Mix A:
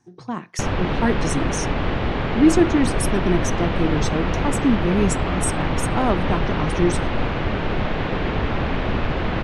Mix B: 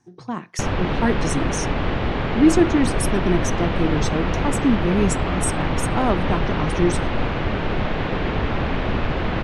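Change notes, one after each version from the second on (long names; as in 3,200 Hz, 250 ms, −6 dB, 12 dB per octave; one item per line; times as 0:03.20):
nothing changed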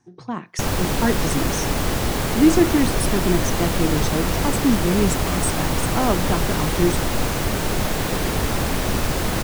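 background: remove low-pass filter 3,200 Hz 24 dB per octave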